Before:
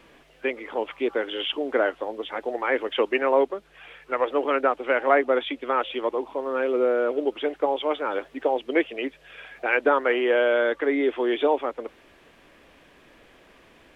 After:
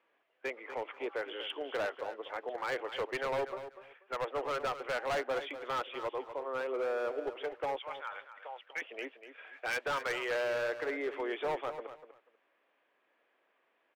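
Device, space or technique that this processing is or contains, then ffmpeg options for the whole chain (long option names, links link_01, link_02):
walkie-talkie: -filter_complex "[0:a]asettb=1/sr,asplit=3[link_01][link_02][link_03];[link_01]atrim=end=7.784[link_04];[link_02]atrim=start=7.78:end=8.82,asetpts=PTS-STARTPTS,afade=type=in:duration=0.004:curve=qsin,afade=type=out:start_time=1.036:duration=0.004:curve=qsin,highpass=1400[link_05];[link_03]atrim=start=8.816[link_06];[link_04][link_05]acrossfade=duration=0.004:curve1=hsin:curve2=qsin[link_07];[link_07][link_06]acrossfade=duration=0.004:curve1=qsin:curve2=hsin,asettb=1/sr,asplit=3[link_08][link_09][link_10];[link_08]atrim=end=9.534[link_11];[link_09]atrim=start=9.53:end=10.35,asetpts=PTS-STARTPTS,afade=type=in:duration=0.004:curve=qsin,afade=type=out:start_time=0.816:duration=0.004:curve=qsin,aemphasis=mode=production:type=riaa[link_12];[link_10]atrim=start=10.346[link_13];[link_11][link_12]acrossfade=duration=0.004:curve1=hsin:curve2=qsin[link_14];[link_14][link_13]acrossfade=duration=0.004:curve1=qsin:curve2=hsin,highpass=530,lowpass=2400,asoftclip=type=hard:threshold=-23.5dB,agate=range=-11dB:threshold=-47dB:ratio=16:detection=peak,aecho=1:1:244|488:0.266|0.0506,volume=-6.5dB"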